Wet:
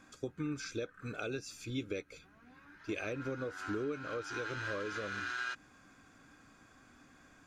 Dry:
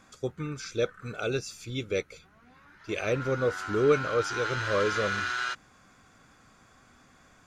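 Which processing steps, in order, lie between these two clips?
compression 12:1, threshold -32 dBFS, peak gain reduction 15.5 dB; small resonant body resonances 290/1600/2500 Hz, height 9 dB; trim -4.5 dB

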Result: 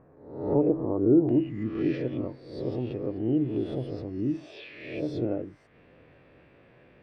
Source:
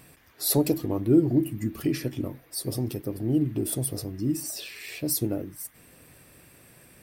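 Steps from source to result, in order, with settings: reverse spectral sustain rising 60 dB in 0.71 s; peaking EQ 500 Hz +6.5 dB 1.3 oct; low-pass 1.3 kHz 24 dB/octave, from 1.29 s 3.1 kHz; trim -5.5 dB

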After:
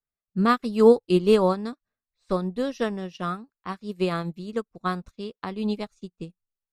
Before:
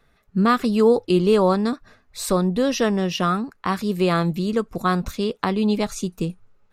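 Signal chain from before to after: level-controlled noise filter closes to 2.5 kHz, open at -17.5 dBFS; upward expansion 2.5:1, over -38 dBFS; trim +2 dB

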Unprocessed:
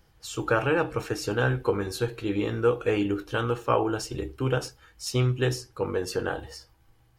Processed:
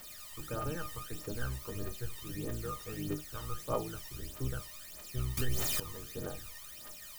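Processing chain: octave divider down 1 oct, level -3 dB; low-pass 1.9 kHz 6 dB/octave; word length cut 6-bit, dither triangular; feedback comb 610 Hz, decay 0.34 s, mix 90%; phaser 1.6 Hz, delay 1.1 ms, feedback 67%; 5.37–5.80 s: level flattener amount 70%

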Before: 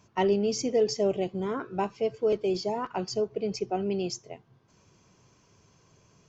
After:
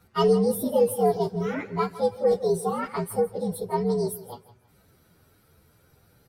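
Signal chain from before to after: frequency axis rescaled in octaves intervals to 122%; feedback delay 162 ms, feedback 26%, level -16.5 dB; trim +5.5 dB

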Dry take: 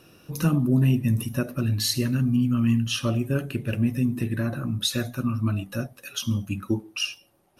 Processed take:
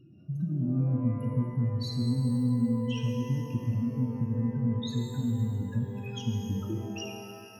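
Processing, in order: spectral contrast enhancement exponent 2.8; compression, threshold -28 dBFS, peak gain reduction 10.5 dB; resonant low shelf 330 Hz +9.5 dB, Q 1.5; feedback comb 120 Hz, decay 1 s, harmonics odd, mix 70%; pitch-shifted reverb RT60 2.1 s, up +12 st, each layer -8 dB, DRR 3 dB

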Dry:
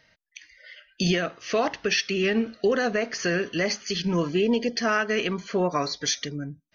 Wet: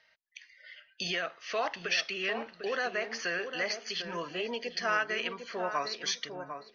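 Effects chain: three-band isolator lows -17 dB, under 550 Hz, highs -23 dB, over 6.1 kHz; on a send: filtered feedback delay 750 ms, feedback 22%, low-pass 960 Hz, level -6 dB; on the sum: trim -4 dB

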